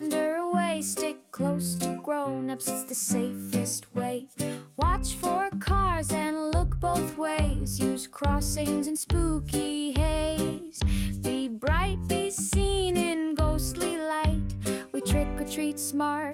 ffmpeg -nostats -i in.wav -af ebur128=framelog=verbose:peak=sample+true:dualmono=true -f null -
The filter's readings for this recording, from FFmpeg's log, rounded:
Integrated loudness:
  I:         -25.9 LUFS
  Threshold: -35.9 LUFS
Loudness range:
  LRA:         2.2 LU
  Threshold: -45.8 LUFS
  LRA low:   -27.1 LUFS
  LRA high:  -25.0 LUFS
Sample peak:
  Peak:      -13.8 dBFS
True peak:
  Peak:      -13.8 dBFS